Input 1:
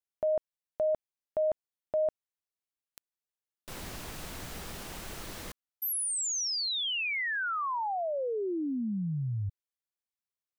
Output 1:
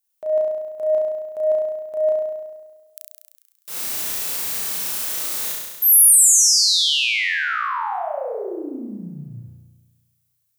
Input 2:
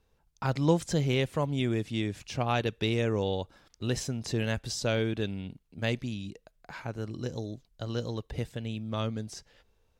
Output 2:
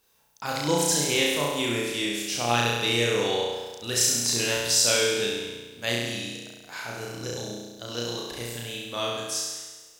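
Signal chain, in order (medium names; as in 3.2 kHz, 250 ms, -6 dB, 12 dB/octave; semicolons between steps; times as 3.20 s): transient shaper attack -4 dB, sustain 0 dB; RIAA curve recording; flutter echo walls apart 5.8 m, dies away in 1.3 s; trim +2.5 dB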